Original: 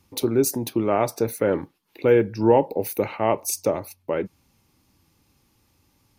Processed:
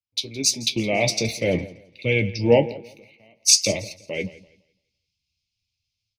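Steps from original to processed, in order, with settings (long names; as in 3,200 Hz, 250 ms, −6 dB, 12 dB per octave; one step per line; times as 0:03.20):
drawn EQ curve 180 Hz 0 dB, 370 Hz −10 dB, 620 Hz −4 dB, 1,400 Hz −29 dB, 2,200 Hz +11 dB, 5,100 Hz +11 dB, 13,000 Hz −18 dB
automatic gain control gain up to 10 dB
in parallel at −0.5 dB: brickwall limiter −11 dBFS, peak gain reduction 9 dB
0:02.72–0:03.41: on the sum: downward compressor 8 to 1, threshold −28 dBFS, peak gain reduction 18.5 dB
flanger 0.51 Hz, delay 8 ms, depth 8 ms, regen +47%
on a send: repeating echo 169 ms, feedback 55%, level −14.5 dB
on the sum: multiband upward and downward expander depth 100%
level −5.5 dB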